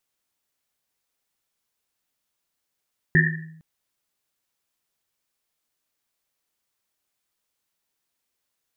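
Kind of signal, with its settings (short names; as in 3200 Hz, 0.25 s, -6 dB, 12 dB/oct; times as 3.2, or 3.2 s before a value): Risset drum length 0.46 s, pitch 160 Hz, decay 0.89 s, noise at 1800 Hz, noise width 200 Hz, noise 55%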